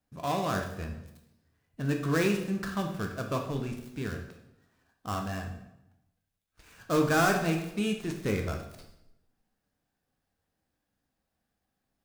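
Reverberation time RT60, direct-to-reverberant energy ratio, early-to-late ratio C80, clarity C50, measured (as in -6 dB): 0.80 s, 2.5 dB, 9.5 dB, 6.5 dB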